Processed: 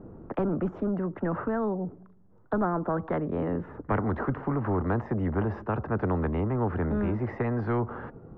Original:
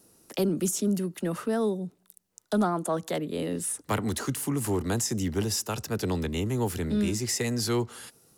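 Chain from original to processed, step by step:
low-pass filter 1,400 Hz 24 dB per octave
spectral tilt −3 dB per octave
every bin compressed towards the loudest bin 2 to 1
level −4 dB

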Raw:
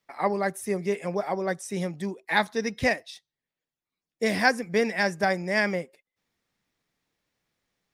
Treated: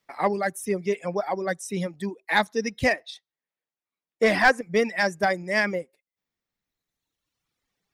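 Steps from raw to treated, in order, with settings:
reverb reduction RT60 1.8 s
in parallel at −9.5 dB: hard clipping −19 dBFS, distortion −12 dB
0:02.93–0:04.61: on the sum: mid-hump overdrive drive 16 dB, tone 1,600 Hz, clips at −6.5 dBFS

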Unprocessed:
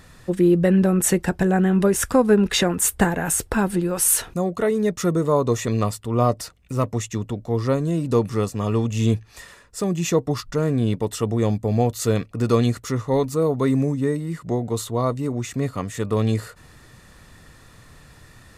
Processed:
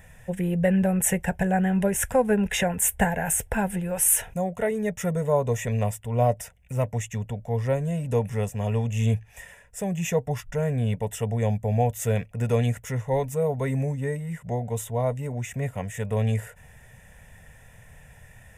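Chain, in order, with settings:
phaser with its sweep stopped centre 1,200 Hz, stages 6

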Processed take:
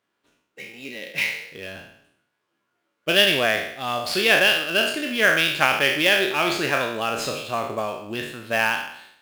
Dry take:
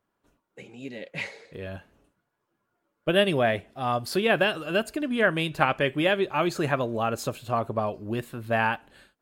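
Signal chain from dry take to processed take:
peak hold with a decay on every bin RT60 0.71 s
meter weighting curve D
in parallel at −8 dB: sample-rate reduction 7,800 Hz, jitter 20%
on the sum: level −4 dB

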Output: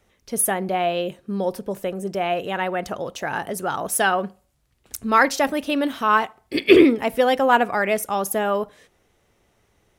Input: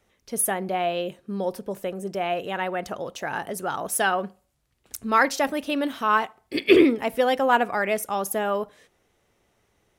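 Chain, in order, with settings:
low-shelf EQ 120 Hz +4 dB
level +3 dB

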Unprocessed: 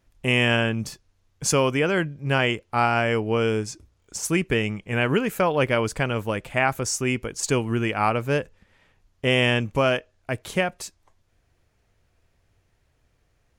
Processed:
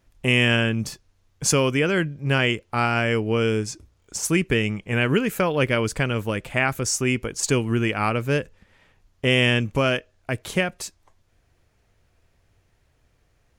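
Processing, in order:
dynamic equaliser 810 Hz, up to −7 dB, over −35 dBFS, Q 1.2
level +2.5 dB

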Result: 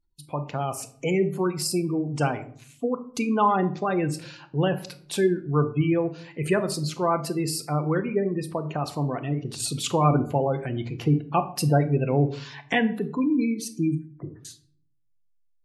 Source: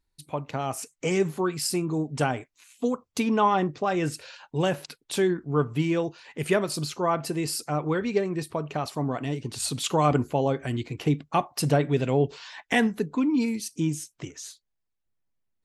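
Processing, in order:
0:13.94–0:14.45: low-pass filter 1,400 Hz 24 dB per octave
gate on every frequency bin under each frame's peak −25 dB strong
rectangular room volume 710 cubic metres, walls furnished, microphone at 0.82 metres

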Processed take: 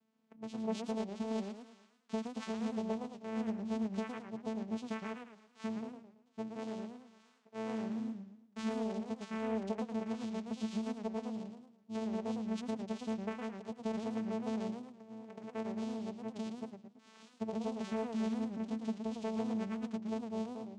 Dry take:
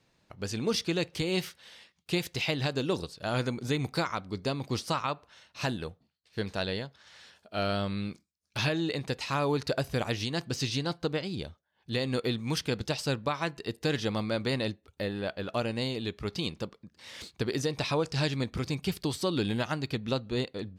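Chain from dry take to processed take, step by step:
0:14.70–0:15.43: compressor whose output falls as the input rises −39 dBFS, ratio −0.5
channel vocoder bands 4, saw 221 Hz
feedback echo with a swinging delay time 111 ms, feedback 41%, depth 216 cents, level −7.5 dB
level −7.5 dB

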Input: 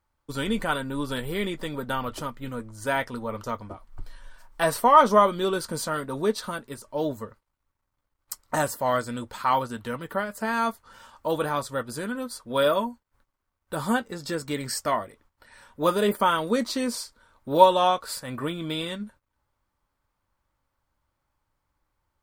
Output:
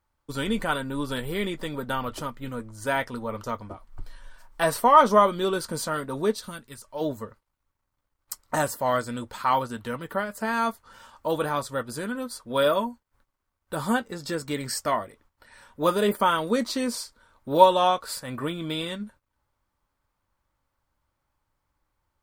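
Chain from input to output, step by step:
0:06.35–0:07.00: parametric band 1,300 Hz → 200 Hz −10.5 dB 2.6 octaves

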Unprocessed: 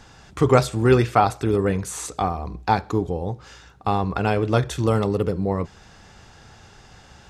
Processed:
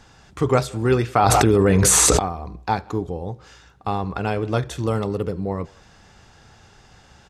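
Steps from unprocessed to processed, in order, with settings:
far-end echo of a speakerphone 180 ms, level −25 dB
0:01.15–0:02.19: envelope flattener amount 100%
level −2.5 dB

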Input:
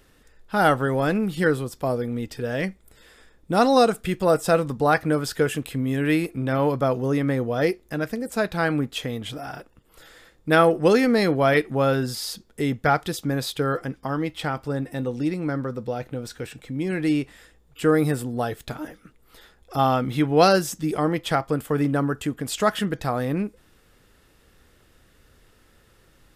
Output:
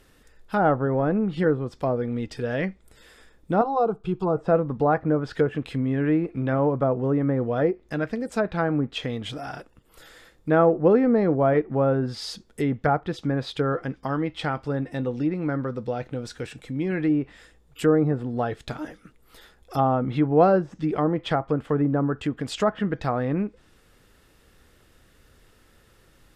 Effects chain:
treble cut that deepens with the level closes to 1,000 Hz, closed at −18 dBFS
0:03.61–0:04.37: phaser with its sweep stopped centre 380 Hz, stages 8

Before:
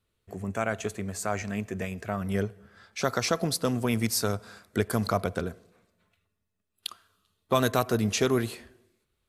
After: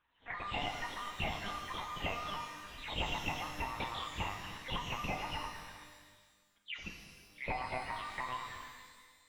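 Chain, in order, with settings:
every frequency bin delayed by itself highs early, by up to 286 ms
high-pass filter 150 Hz 24 dB per octave
gain on a spectral selection 0:06.91–0:08.32, 1,000–3,100 Hz −12 dB
high-shelf EQ 2,400 Hz −5.5 dB
downward compressor 6 to 1, threshold −40 dBFS, peak gain reduction 17.5 dB
ring modulation 1,400 Hz
flanger swept by the level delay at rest 2.4 ms, full sweep at −43 dBFS
linear-prediction vocoder at 8 kHz pitch kept
reverb with rising layers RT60 1.5 s, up +12 semitones, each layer −8 dB, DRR 4 dB
level +10.5 dB

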